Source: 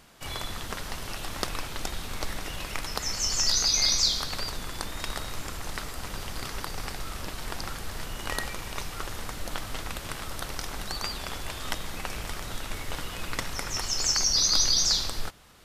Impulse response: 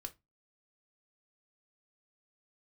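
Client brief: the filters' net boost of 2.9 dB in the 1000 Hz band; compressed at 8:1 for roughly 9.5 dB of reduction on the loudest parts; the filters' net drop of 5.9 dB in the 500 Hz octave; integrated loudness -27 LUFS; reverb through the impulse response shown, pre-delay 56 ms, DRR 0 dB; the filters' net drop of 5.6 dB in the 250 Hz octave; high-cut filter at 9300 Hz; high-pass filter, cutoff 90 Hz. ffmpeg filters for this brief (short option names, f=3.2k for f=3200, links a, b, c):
-filter_complex "[0:a]highpass=90,lowpass=9.3k,equalizer=f=250:t=o:g=-5.5,equalizer=f=500:t=o:g=-8.5,equalizer=f=1k:t=o:g=6,acompressor=threshold=-30dB:ratio=8,asplit=2[a][b];[1:a]atrim=start_sample=2205,adelay=56[c];[b][c]afir=irnorm=-1:irlink=0,volume=4dB[d];[a][d]amix=inputs=2:normalize=0,volume=5dB"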